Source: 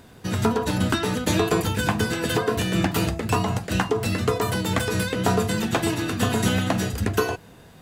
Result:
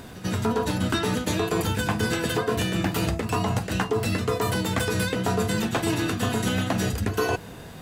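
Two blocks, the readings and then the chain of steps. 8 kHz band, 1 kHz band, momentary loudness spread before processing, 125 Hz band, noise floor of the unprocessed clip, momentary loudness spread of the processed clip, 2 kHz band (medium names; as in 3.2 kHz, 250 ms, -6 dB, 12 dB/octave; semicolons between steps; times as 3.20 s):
-2.0 dB, -2.0 dB, 3 LU, -1.5 dB, -48 dBFS, 2 LU, -1.5 dB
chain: reverse; compression 6:1, threshold -29 dBFS, peak gain reduction 13 dB; reverse; reverse echo 98 ms -16 dB; trim +7 dB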